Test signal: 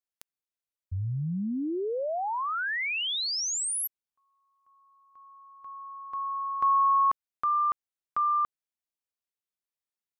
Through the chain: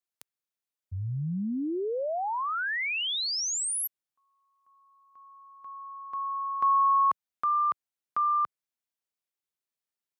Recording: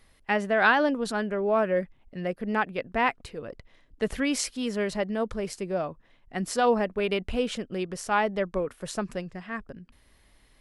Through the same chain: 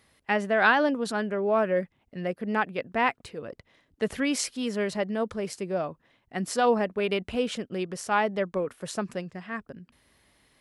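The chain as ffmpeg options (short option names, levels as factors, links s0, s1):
-af "highpass=90"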